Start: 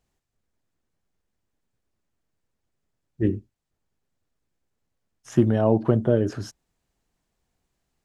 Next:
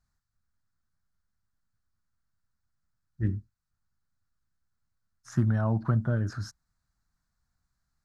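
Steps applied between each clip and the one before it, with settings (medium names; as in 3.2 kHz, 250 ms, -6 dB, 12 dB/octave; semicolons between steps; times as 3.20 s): FFT filter 100 Hz 0 dB, 210 Hz -6 dB, 420 Hz -20 dB, 610 Hz -13 dB, 880 Hz -8 dB, 1.4 kHz +3 dB, 3 kHz -18 dB, 4.2 kHz -2 dB, 9.3 kHz -7 dB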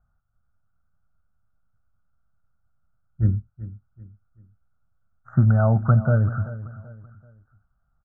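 elliptic low-pass 1.5 kHz, stop band 40 dB; comb 1.5 ms, depth 58%; feedback delay 384 ms, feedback 36%, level -15.5 dB; trim +7 dB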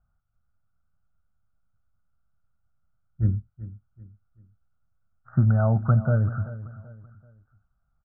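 distance through air 240 m; trim -2.5 dB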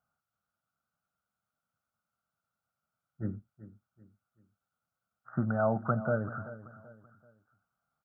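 high-pass 270 Hz 12 dB/octave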